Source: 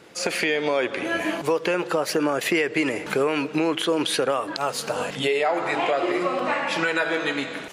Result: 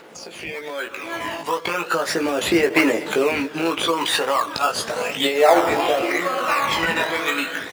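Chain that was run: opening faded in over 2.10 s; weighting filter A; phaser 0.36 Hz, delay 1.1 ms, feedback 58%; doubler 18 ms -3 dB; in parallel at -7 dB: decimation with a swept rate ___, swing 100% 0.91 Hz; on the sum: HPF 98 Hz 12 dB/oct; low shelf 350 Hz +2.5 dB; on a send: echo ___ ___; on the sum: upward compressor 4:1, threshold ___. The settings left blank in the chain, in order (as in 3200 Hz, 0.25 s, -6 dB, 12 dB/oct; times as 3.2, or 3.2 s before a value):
15×, 0.456 s, -22.5 dB, -33 dBFS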